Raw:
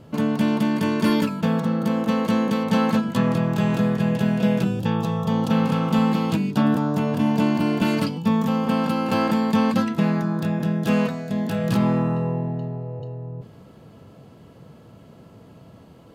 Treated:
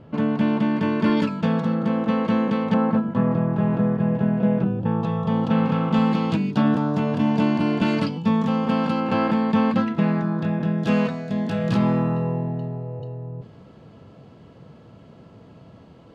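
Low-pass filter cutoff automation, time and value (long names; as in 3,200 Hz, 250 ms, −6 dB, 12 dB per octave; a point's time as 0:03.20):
2,800 Hz
from 0:01.17 4,500 Hz
from 0:01.75 2,900 Hz
from 0:02.74 1,300 Hz
from 0:05.03 2,800 Hz
from 0:05.94 4,700 Hz
from 0:09.00 3,100 Hz
from 0:10.78 5,200 Hz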